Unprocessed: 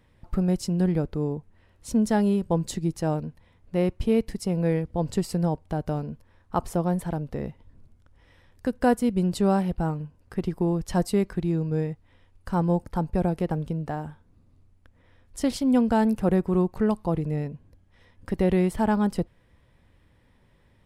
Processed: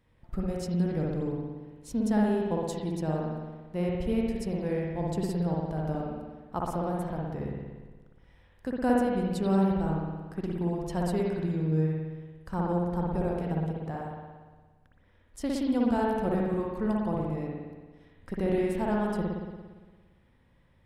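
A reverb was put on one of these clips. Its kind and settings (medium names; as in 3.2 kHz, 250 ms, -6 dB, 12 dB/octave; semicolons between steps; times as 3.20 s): spring tank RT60 1.4 s, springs 57 ms, chirp 35 ms, DRR -3 dB; trim -8 dB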